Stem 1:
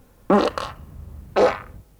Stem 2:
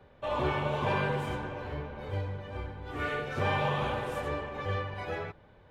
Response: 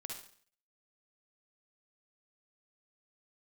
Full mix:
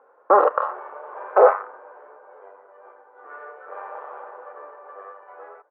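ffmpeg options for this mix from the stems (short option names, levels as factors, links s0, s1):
-filter_complex "[0:a]volume=1.33[s0];[1:a]aeval=exprs='clip(val(0),-1,0.01)':c=same,adelay=300,volume=0.631[s1];[s0][s1]amix=inputs=2:normalize=0,asuperpass=centerf=770:order=8:qfactor=0.78,crystalizer=i=7.5:c=0"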